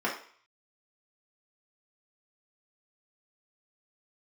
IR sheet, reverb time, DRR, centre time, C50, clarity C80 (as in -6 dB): 0.50 s, -5.5 dB, 26 ms, 6.5 dB, 11.5 dB